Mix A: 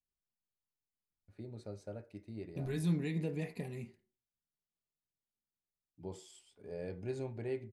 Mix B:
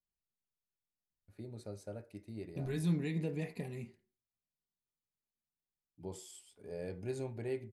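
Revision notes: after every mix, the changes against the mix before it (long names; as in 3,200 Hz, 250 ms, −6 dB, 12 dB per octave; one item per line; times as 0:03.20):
first voice: remove high-frequency loss of the air 62 metres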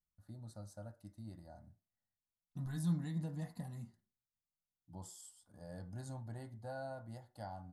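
first voice: entry −1.10 s
master: add phaser with its sweep stopped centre 1,000 Hz, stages 4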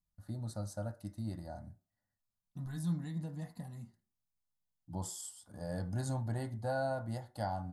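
first voice +10.0 dB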